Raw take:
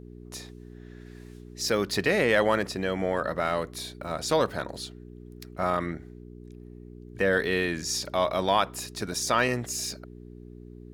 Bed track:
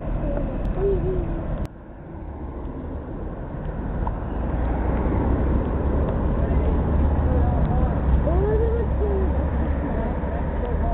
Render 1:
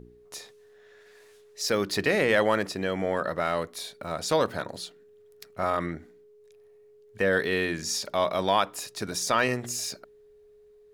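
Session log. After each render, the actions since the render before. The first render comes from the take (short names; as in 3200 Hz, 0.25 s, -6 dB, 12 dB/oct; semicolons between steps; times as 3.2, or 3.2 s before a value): de-hum 60 Hz, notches 6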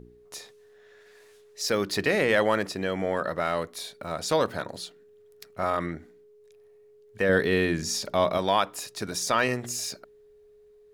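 7.29–8.38 low shelf 400 Hz +7.5 dB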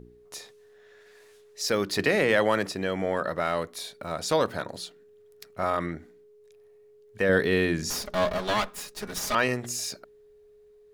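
1.99–2.71 three-band squash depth 40%; 7.9–9.35 minimum comb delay 4.8 ms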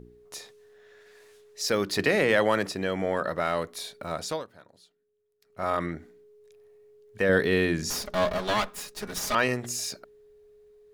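4.16–5.72 dip -20 dB, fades 0.29 s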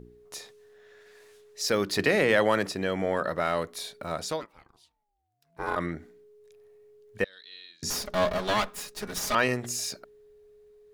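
4.4–5.75 ring modulator 820 Hz -> 200 Hz; 7.24–7.83 band-pass 3900 Hz, Q 12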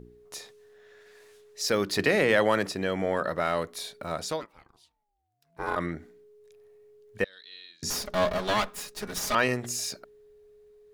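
nothing audible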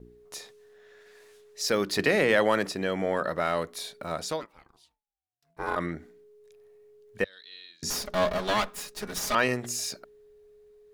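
gate with hold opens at -51 dBFS; bell 100 Hz -5.5 dB 0.38 oct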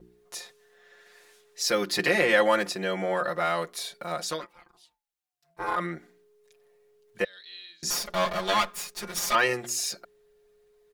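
low shelf 310 Hz -9 dB; comb 5.7 ms, depth 92%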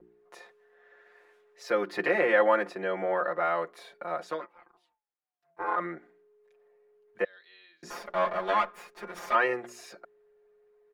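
three-band isolator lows -14 dB, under 260 Hz, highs -22 dB, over 2200 Hz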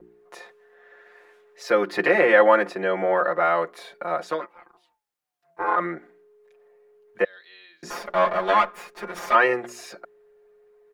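gain +7 dB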